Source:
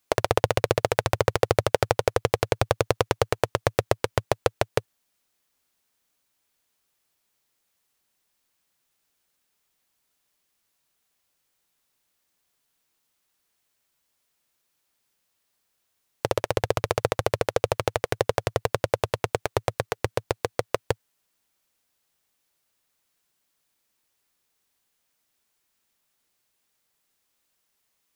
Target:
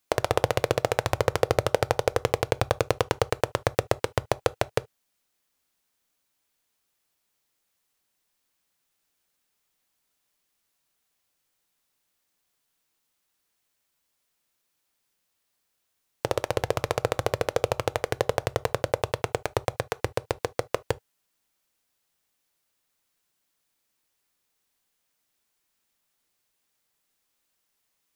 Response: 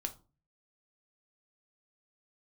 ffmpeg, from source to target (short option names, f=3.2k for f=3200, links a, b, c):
-filter_complex "[0:a]asplit=2[a][b];[1:a]atrim=start_sample=2205,atrim=end_sample=3528[c];[b][c]afir=irnorm=-1:irlink=0,volume=-9dB[d];[a][d]amix=inputs=2:normalize=0,volume=-4dB"